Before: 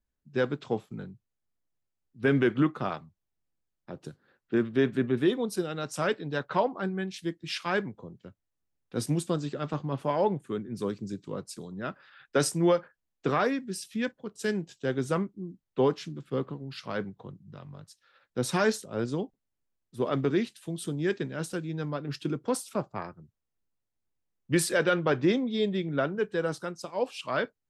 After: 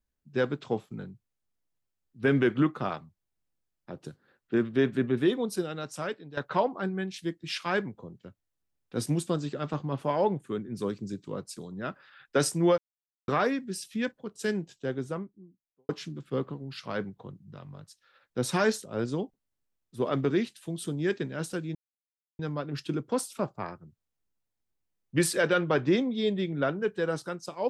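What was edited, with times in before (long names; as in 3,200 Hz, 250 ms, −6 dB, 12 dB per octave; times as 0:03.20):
0:05.56–0:06.37: fade out, to −13.5 dB
0:12.78–0:13.28: silence
0:14.40–0:15.89: fade out and dull
0:21.75: splice in silence 0.64 s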